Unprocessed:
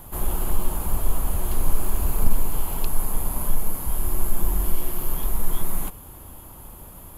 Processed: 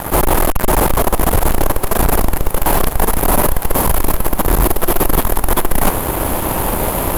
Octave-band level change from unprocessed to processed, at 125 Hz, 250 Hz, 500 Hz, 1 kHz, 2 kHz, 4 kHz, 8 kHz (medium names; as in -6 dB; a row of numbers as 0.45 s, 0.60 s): +10.5 dB, +16.0 dB, +20.0 dB, +19.0 dB, +20.0 dB, +16.5 dB, +12.0 dB